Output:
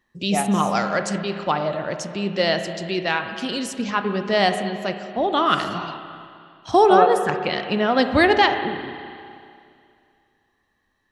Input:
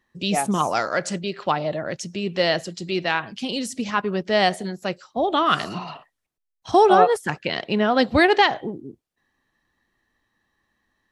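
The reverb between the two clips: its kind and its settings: spring tank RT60 2.4 s, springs 30/35/59 ms, chirp 35 ms, DRR 7 dB

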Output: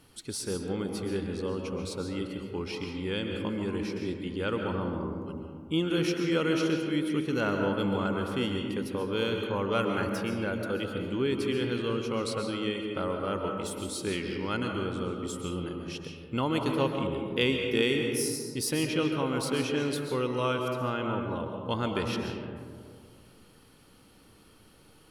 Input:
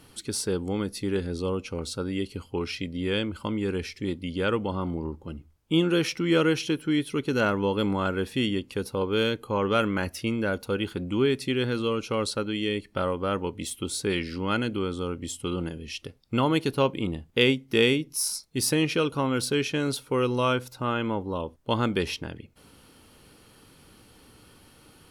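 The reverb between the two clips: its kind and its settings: digital reverb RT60 2.1 s, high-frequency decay 0.3×, pre-delay 95 ms, DRR 2.5 dB; gain -5.5 dB

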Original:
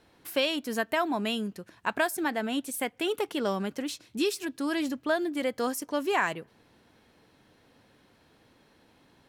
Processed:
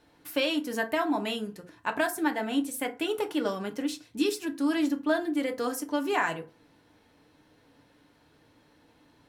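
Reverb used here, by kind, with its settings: FDN reverb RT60 0.33 s, low-frequency decay 1.05×, high-frequency decay 0.55×, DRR 4 dB; gain -2 dB

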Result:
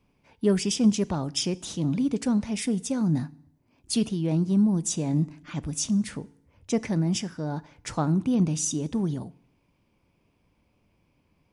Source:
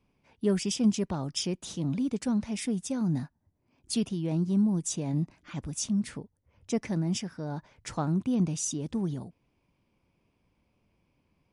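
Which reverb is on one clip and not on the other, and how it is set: FDN reverb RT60 0.66 s, low-frequency decay 1.1×, high-frequency decay 0.95×, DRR 17.5 dB; gain +4 dB

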